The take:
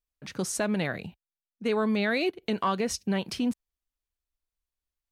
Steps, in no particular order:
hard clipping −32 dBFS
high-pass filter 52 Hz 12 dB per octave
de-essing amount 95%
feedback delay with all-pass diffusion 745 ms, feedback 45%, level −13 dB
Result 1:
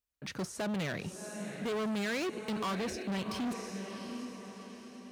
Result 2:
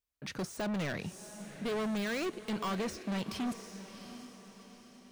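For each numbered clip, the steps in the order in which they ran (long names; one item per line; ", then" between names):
feedback delay with all-pass diffusion, then de-essing, then hard clipping, then high-pass filter
high-pass filter, then hard clipping, then feedback delay with all-pass diffusion, then de-essing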